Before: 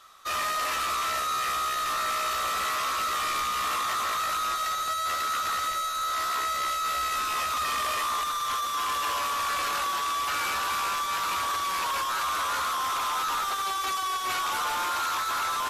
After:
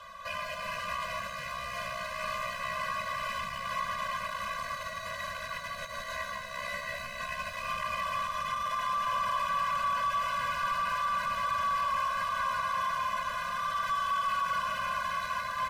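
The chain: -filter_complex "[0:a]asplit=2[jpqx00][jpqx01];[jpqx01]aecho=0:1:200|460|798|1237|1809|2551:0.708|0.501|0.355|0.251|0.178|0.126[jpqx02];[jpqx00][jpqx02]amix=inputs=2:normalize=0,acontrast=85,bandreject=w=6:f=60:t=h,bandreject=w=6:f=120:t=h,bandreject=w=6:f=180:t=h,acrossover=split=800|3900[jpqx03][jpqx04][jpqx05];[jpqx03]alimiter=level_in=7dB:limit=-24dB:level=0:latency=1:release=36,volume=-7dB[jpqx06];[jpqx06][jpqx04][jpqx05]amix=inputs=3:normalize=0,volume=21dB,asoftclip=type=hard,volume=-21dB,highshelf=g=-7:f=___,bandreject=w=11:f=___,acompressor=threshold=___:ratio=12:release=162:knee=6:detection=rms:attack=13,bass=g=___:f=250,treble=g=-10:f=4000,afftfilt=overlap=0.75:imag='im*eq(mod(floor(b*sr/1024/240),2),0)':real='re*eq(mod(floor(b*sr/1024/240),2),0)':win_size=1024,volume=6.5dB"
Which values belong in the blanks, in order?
3800, 3600, -33dB, 1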